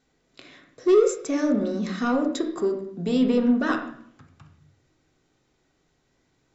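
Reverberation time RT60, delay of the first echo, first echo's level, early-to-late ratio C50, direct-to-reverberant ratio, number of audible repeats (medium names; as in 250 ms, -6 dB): 0.65 s, no echo, no echo, 8.0 dB, 3.0 dB, no echo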